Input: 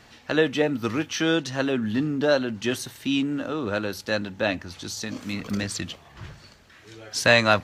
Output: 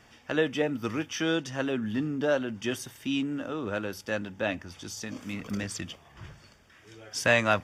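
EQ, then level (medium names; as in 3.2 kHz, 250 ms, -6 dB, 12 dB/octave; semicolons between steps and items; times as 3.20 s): Butterworth band-stop 4.1 kHz, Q 5.9; -5.0 dB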